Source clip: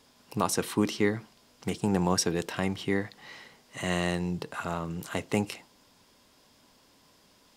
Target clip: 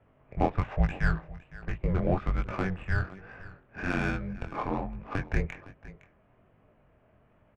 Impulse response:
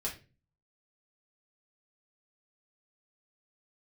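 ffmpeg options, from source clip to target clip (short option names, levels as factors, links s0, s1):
-filter_complex "[0:a]highpass=f=240:t=q:w=0.5412,highpass=f=240:t=q:w=1.307,lowpass=f=3000:t=q:w=0.5176,lowpass=f=3000:t=q:w=0.7071,lowpass=f=3000:t=q:w=1.932,afreqshift=-380,adynamicsmooth=sensitivity=4:basefreq=1600,asplit=2[s0][s1];[s1]aecho=0:1:511:0.126[s2];[s0][s2]amix=inputs=2:normalize=0,flanger=delay=18:depth=7.2:speed=1.2,volume=2"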